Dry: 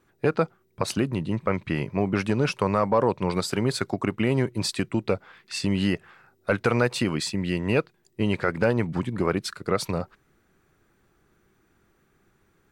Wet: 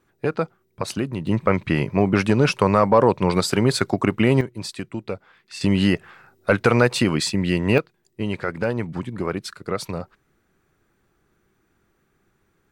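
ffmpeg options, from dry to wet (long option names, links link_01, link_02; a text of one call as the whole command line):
ffmpeg -i in.wav -af "asetnsamples=nb_out_samples=441:pad=0,asendcmd='1.27 volume volume 6dB;4.41 volume volume -4.5dB;5.61 volume volume 5.5dB;7.78 volume volume -1.5dB',volume=-0.5dB" out.wav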